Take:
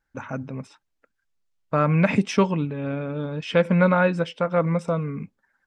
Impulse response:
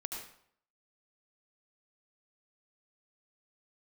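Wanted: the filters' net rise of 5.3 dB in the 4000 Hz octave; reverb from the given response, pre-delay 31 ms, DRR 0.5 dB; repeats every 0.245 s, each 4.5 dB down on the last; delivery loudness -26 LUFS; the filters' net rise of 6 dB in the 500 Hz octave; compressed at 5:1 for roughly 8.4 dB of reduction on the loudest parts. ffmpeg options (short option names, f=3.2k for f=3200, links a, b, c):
-filter_complex "[0:a]equalizer=f=500:t=o:g=6.5,equalizer=f=4k:t=o:g=7.5,acompressor=threshold=-19dB:ratio=5,aecho=1:1:245|490|735|980|1225|1470|1715|1960|2205:0.596|0.357|0.214|0.129|0.0772|0.0463|0.0278|0.0167|0.01,asplit=2[a][b];[1:a]atrim=start_sample=2205,adelay=31[c];[b][c]afir=irnorm=-1:irlink=0,volume=-0.5dB[d];[a][d]amix=inputs=2:normalize=0,volume=-5.5dB"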